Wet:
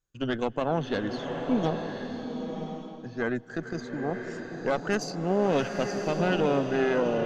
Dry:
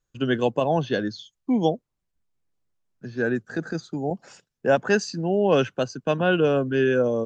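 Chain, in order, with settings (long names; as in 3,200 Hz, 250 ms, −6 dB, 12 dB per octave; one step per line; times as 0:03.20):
harmonic generator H 4 −14 dB, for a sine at −6.5 dBFS
brickwall limiter −10 dBFS, peak gain reduction 4.5 dB
slow-attack reverb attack 1,040 ms, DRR 3.5 dB
level −5 dB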